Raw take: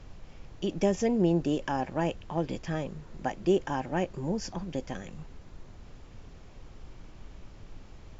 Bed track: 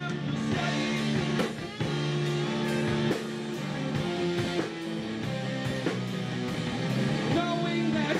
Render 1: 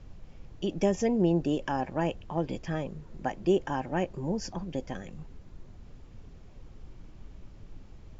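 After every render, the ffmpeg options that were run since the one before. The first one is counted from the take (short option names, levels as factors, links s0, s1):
-af "afftdn=nr=6:nf=-50"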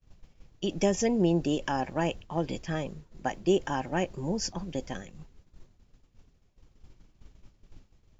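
-af "agate=range=0.0224:threshold=0.0158:ratio=3:detection=peak,highshelf=f=2900:g=9.5"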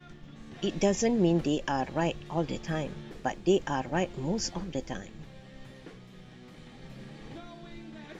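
-filter_complex "[1:a]volume=0.119[s0];[0:a][s0]amix=inputs=2:normalize=0"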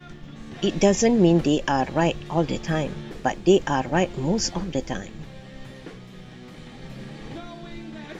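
-af "volume=2.37"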